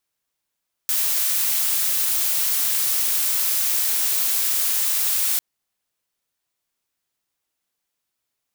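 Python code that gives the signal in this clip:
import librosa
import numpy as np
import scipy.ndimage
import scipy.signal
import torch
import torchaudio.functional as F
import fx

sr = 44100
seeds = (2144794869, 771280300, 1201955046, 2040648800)

y = fx.noise_colour(sr, seeds[0], length_s=4.5, colour='blue', level_db=-21.0)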